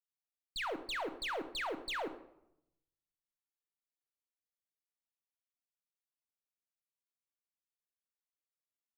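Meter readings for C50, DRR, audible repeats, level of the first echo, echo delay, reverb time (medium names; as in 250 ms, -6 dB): 11.5 dB, 7.5 dB, 1, -19.0 dB, 110 ms, 0.80 s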